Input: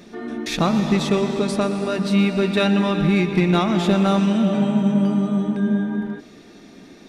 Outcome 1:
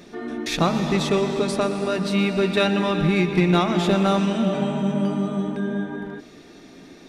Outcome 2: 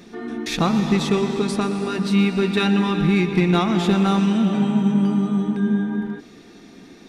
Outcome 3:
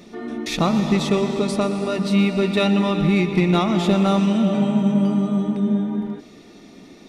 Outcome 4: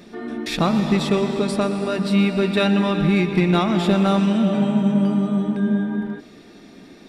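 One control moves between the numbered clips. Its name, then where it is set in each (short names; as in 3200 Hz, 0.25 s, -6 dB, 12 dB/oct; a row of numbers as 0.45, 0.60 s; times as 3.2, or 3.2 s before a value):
notch, frequency: 210, 600, 1600, 6300 Hz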